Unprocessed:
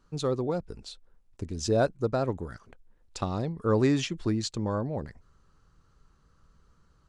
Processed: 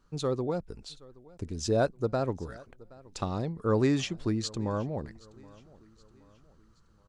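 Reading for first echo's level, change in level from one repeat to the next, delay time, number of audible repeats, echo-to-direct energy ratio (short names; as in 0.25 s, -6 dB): -23.0 dB, -7.0 dB, 0.773 s, 2, -22.0 dB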